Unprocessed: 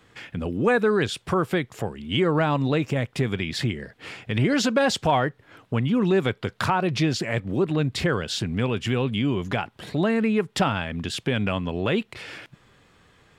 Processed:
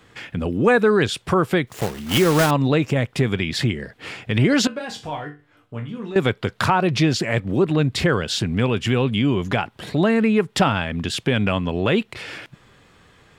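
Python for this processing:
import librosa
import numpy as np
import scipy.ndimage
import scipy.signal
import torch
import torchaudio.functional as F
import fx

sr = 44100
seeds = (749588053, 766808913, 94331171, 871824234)

y = fx.block_float(x, sr, bits=3, at=(1.67, 2.52))
y = fx.resonator_bank(y, sr, root=43, chord='minor', decay_s=0.3, at=(4.67, 6.16))
y = y * 10.0 ** (4.5 / 20.0)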